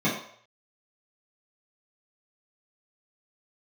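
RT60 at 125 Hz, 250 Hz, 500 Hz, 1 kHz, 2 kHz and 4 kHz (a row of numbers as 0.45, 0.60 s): 0.50, 0.40, 0.60, 0.60, 0.60, 0.55 s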